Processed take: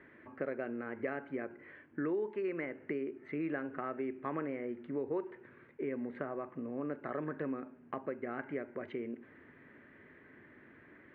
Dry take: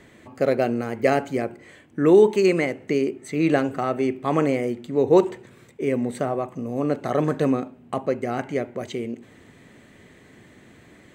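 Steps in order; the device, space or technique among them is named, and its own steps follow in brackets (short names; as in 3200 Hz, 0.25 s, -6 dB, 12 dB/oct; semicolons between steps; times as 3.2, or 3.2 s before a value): bass amplifier (compressor 4:1, threshold -27 dBFS, peak gain reduction 14 dB; speaker cabinet 70–2200 Hz, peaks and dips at 77 Hz -8 dB, 120 Hz -10 dB, 190 Hz -9 dB, 490 Hz -3 dB, 740 Hz -7 dB, 1600 Hz +6 dB); gain -6 dB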